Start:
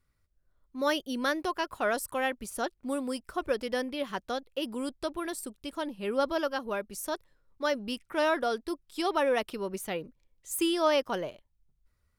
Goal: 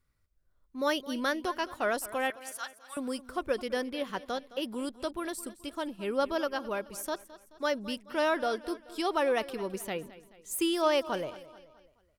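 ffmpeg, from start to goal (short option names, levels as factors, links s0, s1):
-filter_complex "[0:a]asettb=1/sr,asplit=3[s0][s1][s2];[s0]atrim=end=2.304[s3];[s1]atrim=start=2.3:end=2.97,asetpts=PTS-STARTPTS,afade=t=in:d=0.004:c=qsin,afade=t=out:st=0.666:d=0.004:c=qsin,highpass=f=1100:w=0.5412,highpass=f=1100:w=1.3066[s4];[s2]atrim=start=2.966[s5];[s3][s4]acrossfade=d=0.004:c1=hsin:c2=qsin[s6];[s6][s5]acrossfade=d=0.004:c1=qsin:c2=hsin,asplit=2[s7][s8];[s8]aecho=0:1:215|430|645|860:0.141|0.065|0.0299|0.0137[s9];[s7][s9]amix=inputs=2:normalize=0,volume=0.891"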